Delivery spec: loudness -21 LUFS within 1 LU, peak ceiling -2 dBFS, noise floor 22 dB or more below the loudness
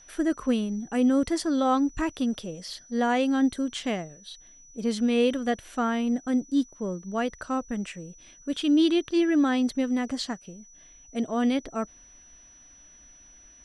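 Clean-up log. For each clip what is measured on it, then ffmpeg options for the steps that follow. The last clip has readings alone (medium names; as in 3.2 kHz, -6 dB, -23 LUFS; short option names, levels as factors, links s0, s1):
steady tone 5.9 kHz; tone level -51 dBFS; loudness -26.5 LUFS; peak level -12.5 dBFS; loudness target -21.0 LUFS
-> -af "bandreject=f=5900:w=30"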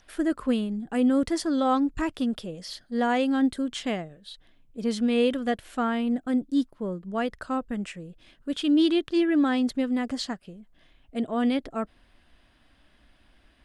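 steady tone not found; loudness -26.5 LUFS; peak level -12.5 dBFS; loudness target -21.0 LUFS
-> -af "volume=1.88"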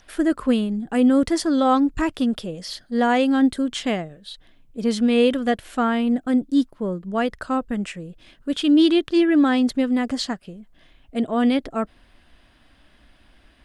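loudness -21.0 LUFS; peak level -7.0 dBFS; noise floor -56 dBFS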